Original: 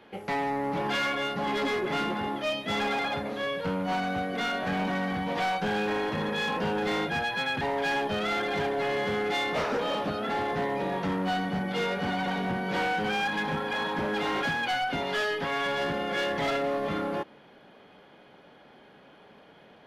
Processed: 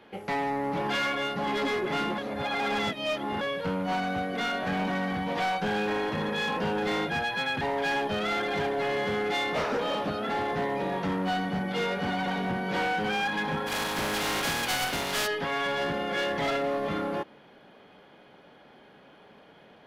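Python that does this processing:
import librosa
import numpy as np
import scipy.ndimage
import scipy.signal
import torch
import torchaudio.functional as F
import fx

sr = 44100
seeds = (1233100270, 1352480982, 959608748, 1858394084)

y = fx.spec_flatten(x, sr, power=0.49, at=(13.66, 15.26), fade=0.02)
y = fx.edit(y, sr, fx.reverse_span(start_s=2.18, length_s=1.23), tone=tone)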